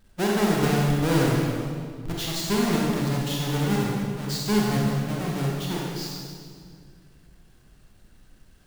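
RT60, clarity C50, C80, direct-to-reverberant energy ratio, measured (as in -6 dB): 2.1 s, -1.5 dB, 0.0 dB, -3.5 dB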